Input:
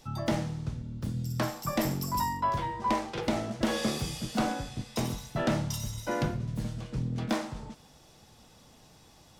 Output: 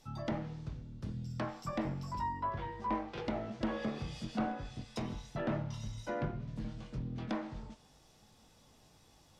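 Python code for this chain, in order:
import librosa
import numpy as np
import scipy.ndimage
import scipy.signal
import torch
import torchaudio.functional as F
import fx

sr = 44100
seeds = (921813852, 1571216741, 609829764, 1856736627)

y = fx.chorus_voices(x, sr, voices=6, hz=0.31, base_ms=21, depth_ms=2.5, mix_pct=30)
y = fx.env_lowpass_down(y, sr, base_hz=2000.0, full_db=-28.0)
y = y * librosa.db_to_amplitude(-4.5)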